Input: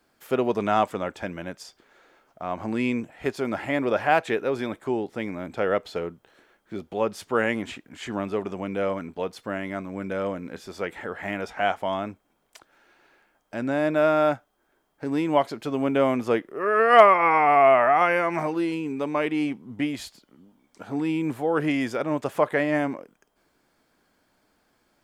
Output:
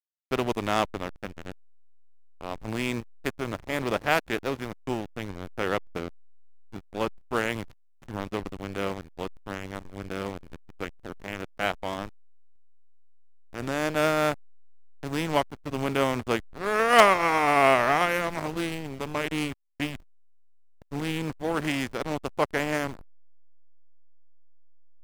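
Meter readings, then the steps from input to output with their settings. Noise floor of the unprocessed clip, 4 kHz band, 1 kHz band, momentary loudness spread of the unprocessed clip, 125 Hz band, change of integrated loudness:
−69 dBFS, +4.0 dB, −4.0 dB, 16 LU, +0.5 dB, −3.5 dB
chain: compressing power law on the bin magnitudes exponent 0.59
slack as between gear wheels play −22 dBFS
level −3 dB

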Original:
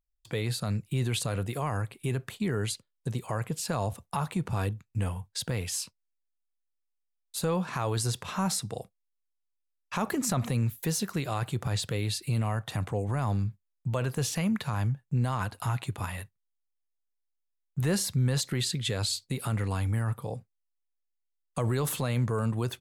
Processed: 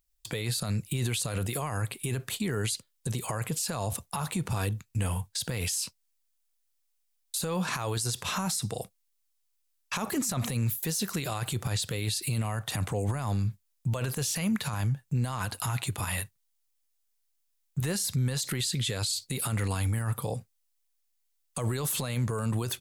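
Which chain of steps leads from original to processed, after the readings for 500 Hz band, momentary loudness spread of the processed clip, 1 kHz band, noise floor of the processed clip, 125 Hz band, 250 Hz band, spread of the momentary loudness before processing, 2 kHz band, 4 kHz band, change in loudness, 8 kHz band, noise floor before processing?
−2.0 dB, 5 LU, −1.5 dB, −74 dBFS, −1.0 dB, −1.5 dB, 8 LU, +1.5 dB, +1.5 dB, 0.0 dB, +3.5 dB, −80 dBFS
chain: high-shelf EQ 3,100 Hz +11 dB
brickwall limiter −26.5 dBFS, peak gain reduction 16 dB
level +5 dB

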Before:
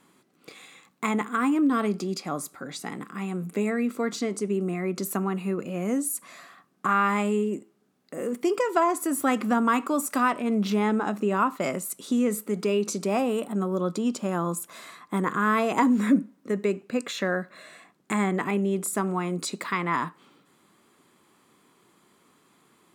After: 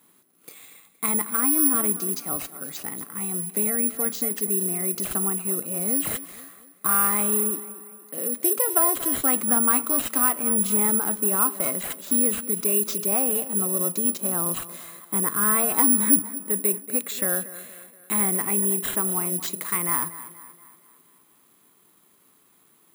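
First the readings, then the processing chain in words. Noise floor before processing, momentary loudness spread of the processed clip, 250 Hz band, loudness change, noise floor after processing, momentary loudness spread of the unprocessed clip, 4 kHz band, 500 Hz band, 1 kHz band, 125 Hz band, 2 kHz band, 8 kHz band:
−64 dBFS, 12 LU, −4.0 dB, +5.0 dB, −60 dBFS, 10 LU, 0.0 dB, −4.0 dB, −4.0 dB, −4.0 dB, −3.5 dB, +15.5 dB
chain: notch filter 6,800 Hz, Q 30
on a send: tape delay 235 ms, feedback 52%, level −14.5 dB, low-pass 5,700 Hz
on the sum: bad sample-rate conversion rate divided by 4×, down none, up zero stuff
level −4 dB

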